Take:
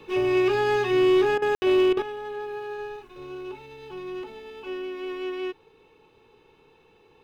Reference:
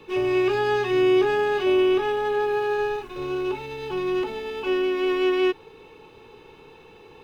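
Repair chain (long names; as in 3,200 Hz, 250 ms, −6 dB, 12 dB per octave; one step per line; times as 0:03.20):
clipped peaks rebuilt −15.5 dBFS
ambience match 0:01.55–0:01.62
repair the gap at 0:01.38/0:01.93, 39 ms
level correction +10 dB, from 0:02.02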